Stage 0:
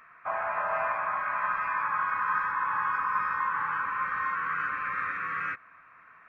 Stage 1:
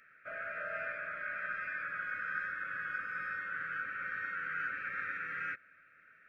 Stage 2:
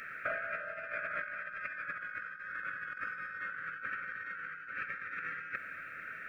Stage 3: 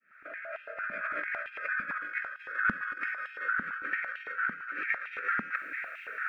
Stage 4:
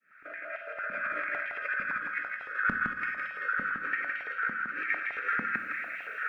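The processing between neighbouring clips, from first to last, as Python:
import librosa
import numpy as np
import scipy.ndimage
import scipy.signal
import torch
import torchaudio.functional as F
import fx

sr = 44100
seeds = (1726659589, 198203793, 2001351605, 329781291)

y1 = scipy.signal.sosfilt(scipy.signal.cheby1(3, 1.0, [600.0, 1400.0], 'bandstop', fs=sr, output='sos'), x)
y1 = fx.low_shelf(y1, sr, hz=190.0, db=-5.0)
y1 = y1 * 10.0 ** (-4.0 / 20.0)
y2 = fx.over_compress(y1, sr, threshold_db=-46.0, ratio=-0.5)
y2 = y2 * 10.0 ** (8.0 / 20.0)
y3 = fx.fade_in_head(y2, sr, length_s=1.29)
y3 = fx.filter_held_highpass(y3, sr, hz=8.9, low_hz=220.0, high_hz=2900.0)
y3 = y3 * 10.0 ** (2.5 / 20.0)
y4 = y3 + 10.0 ** (-4.0 / 20.0) * np.pad(y3, (int(163 * sr / 1000.0), 0))[:len(y3)]
y4 = fx.room_shoebox(y4, sr, seeds[0], volume_m3=300.0, walls='mixed', distance_m=0.31)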